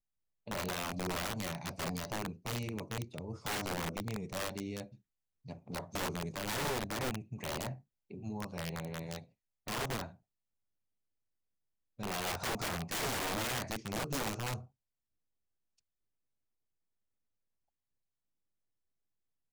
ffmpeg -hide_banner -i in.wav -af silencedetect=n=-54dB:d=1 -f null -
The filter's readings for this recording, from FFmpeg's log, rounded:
silence_start: 10.15
silence_end: 11.99 | silence_duration: 1.83
silence_start: 14.66
silence_end: 19.52 | silence_duration: 4.86